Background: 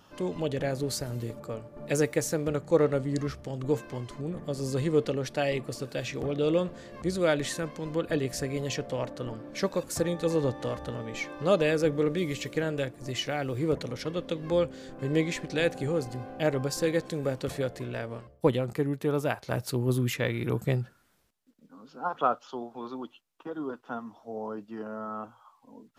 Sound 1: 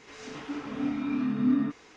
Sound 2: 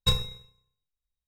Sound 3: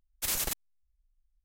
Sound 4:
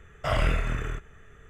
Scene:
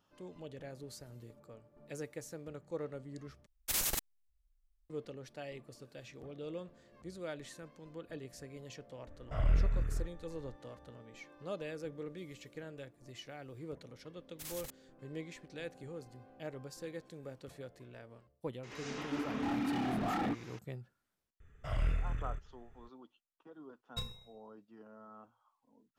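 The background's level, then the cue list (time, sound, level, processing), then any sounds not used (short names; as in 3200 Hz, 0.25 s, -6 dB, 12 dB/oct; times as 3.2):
background -17.5 dB
3.46 replace with 3 -2.5 dB
9.07 add 4 -16 dB + tilt -3 dB/oct
14.17 add 3 -15.5 dB
18.63 add 1 -1 dB + wavefolder -28.5 dBFS
21.4 add 4 -17 dB + low shelf 160 Hz +11.5 dB
23.9 add 2 -16.5 dB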